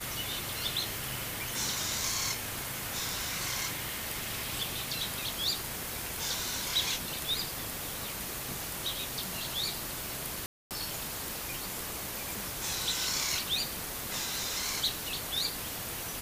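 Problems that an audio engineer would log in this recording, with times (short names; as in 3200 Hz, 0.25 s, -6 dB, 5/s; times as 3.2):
10.46–10.71 gap 0.248 s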